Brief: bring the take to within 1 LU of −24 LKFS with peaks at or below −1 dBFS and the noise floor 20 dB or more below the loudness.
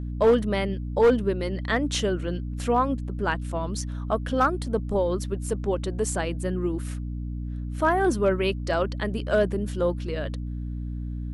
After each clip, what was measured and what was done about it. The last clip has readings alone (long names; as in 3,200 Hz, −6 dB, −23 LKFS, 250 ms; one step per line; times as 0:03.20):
share of clipped samples 0.4%; peaks flattened at −13.0 dBFS; mains hum 60 Hz; hum harmonics up to 300 Hz; level of the hum −29 dBFS; integrated loudness −26.5 LKFS; sample peak −13.0 dBFS; target loudness −24.0 LKFS
→ clipped peaks rebuilt −13 dBFS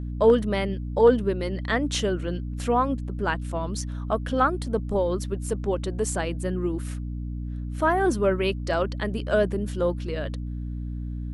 share of clipped samples 0.0%; mains hum 60 Hz; hum harmonics up to 300 Hz; level of the hum −29 dBFS
→ mains-hum notches 60/120/180/240/300 Hz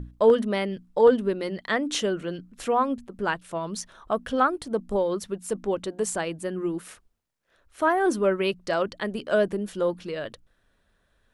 mains hum none found; integrated loudness −26.0 LKFS; sample peak −7.0 dBFS; target loudness −24.0 LKFS
→ level +2 dB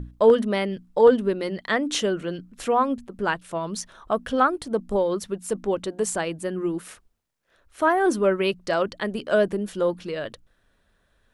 integrated loudness −24.0 LKFS; sample peak −5.0 dBFS; background noise floor −67 dBFS